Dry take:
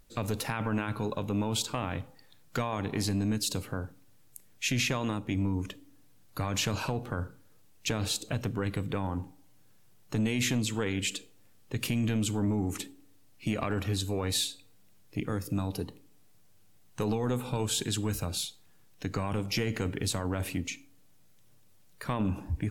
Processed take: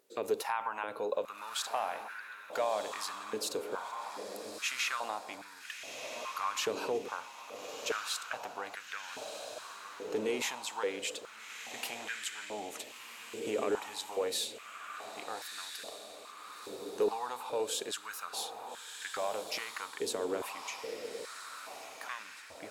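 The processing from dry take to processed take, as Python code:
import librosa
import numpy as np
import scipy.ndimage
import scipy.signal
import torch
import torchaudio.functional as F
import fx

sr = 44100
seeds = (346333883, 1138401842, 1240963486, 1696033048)

p1 = x + fx.echo_diffused(x, sr, ms=1319, feedback_pct=49, wet_db=-6.5, dry=0)
p2 = fx.filter_held_highpass(p1, sr, hz=2.4, low_hz=420.0, high_hz=1600.0)
y = p2 * 10.0 ** (-5.5 / 20.0)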